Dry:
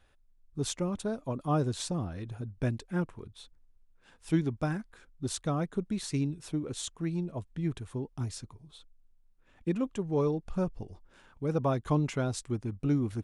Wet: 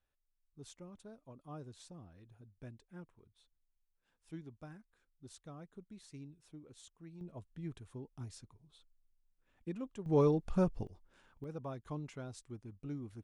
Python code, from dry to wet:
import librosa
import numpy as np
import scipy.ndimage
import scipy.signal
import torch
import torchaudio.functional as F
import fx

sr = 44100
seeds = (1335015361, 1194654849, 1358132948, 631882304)

y = fx.gain(x, sr, db=fx.steps((0.0, -20.0), (7.21, -11.5), (10.06, 0.0), (10.87, -8.0), (11.44, -15.0)))